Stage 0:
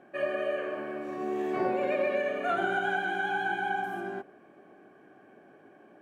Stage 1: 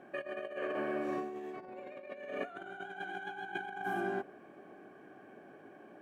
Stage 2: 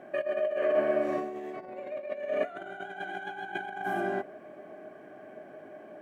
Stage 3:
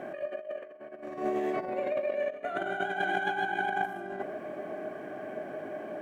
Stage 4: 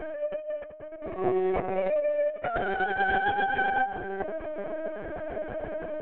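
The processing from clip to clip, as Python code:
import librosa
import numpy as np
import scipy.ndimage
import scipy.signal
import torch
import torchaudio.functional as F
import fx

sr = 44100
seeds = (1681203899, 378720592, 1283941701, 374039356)

y1 = fx.over_compress(x, sr, threshold_db=-35.0, ratio=-0.5)
y1 = y1 * 10.0 ** (-4.0 / 20.0)
y2 = fx.small_body(y1, sr, hz=(620.0, 2000.0), ring_ms=90, db=16)
y2 = y2 * 10.0 ** (3.5 / 20.0)
y3 = fx.over_compress(y2, sr, threshold_db=-36.0, ratio=-0.5)
y3 = y3 * 10.0 ** (4.0 / 20.0)
y4 = fx.lpc_vocoder(y3, sr, seeds[0], excitation='pitch_kept', order=16)
y4 = y4 * 10.0 ** (4.5 / 20.0)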